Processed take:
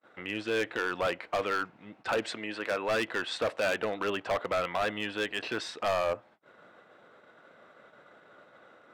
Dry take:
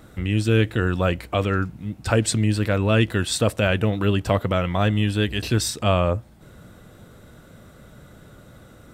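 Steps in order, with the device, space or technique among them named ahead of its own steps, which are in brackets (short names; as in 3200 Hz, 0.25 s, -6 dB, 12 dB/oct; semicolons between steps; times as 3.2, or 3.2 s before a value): 2.3–2.91 HPF 290 Hz 6 dB/oct; walkie-talkie (BPF 570–2400 Hz; hard clip -24 dBFS, distortion -8 dB; gate -55 dBFS, range -35 dB)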